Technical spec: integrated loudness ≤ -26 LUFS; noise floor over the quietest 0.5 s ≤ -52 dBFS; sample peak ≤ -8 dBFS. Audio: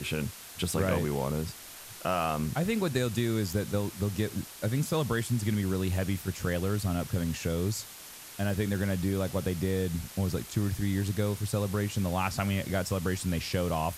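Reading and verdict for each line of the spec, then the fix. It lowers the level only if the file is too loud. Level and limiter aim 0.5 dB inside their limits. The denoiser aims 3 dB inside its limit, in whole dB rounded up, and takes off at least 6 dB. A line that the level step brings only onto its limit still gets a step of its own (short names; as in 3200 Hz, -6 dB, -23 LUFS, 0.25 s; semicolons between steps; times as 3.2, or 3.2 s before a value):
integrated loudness -30.5 LUFS: OK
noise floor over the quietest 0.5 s -47 dBFS: fail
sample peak -15.0 dBFS: OK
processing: denoiser 8 dB, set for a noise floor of -47 dBFS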